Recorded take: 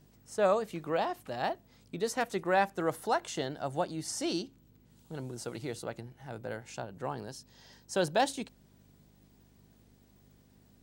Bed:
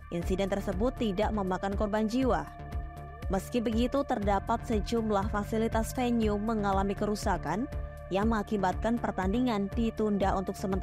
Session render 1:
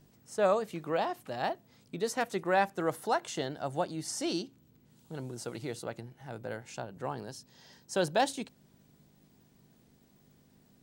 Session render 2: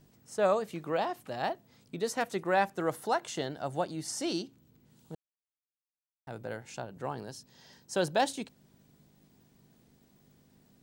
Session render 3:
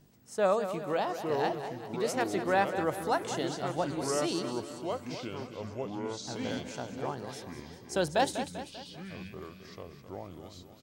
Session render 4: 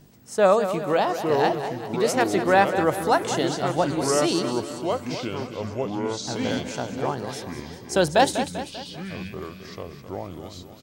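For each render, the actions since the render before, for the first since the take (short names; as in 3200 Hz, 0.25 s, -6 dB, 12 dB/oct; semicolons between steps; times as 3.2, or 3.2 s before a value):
de-hum 50 Hz, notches 2
5.15–6.27 mute
feedback echo 0.196 s, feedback 51%, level -10 dB; echoes that change speed 0.728 s, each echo -5 st, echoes 2, each echo -6 dB
gain +9 dB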